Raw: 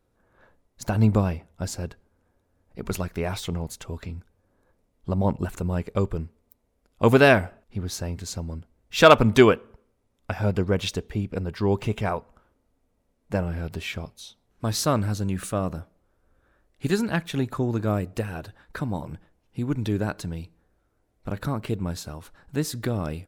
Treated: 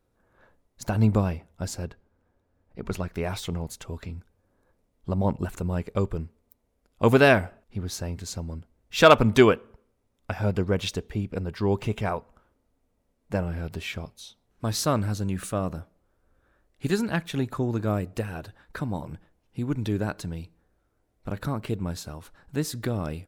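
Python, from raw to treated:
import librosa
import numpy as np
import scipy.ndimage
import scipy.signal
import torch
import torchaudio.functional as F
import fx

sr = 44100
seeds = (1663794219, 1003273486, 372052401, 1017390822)

y = fx.high_shelf(x, sr, hz=6000.0, db=-11.0, at=(1.85, 3.14))
y = y * librosa.db_to_amplitude(-1.5)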